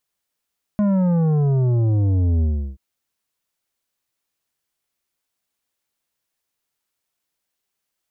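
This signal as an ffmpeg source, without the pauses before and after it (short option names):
-f lavfi -i "aevalsrc='0.158*clip((1.98-t)/0.35,0,1)*tanh(2.99*sin(2*PI*210*1.98/log(65/210)*(exp(log(65/210)*t/1.98)-1)))/tanh(2.99)':d=1.98:s=44100"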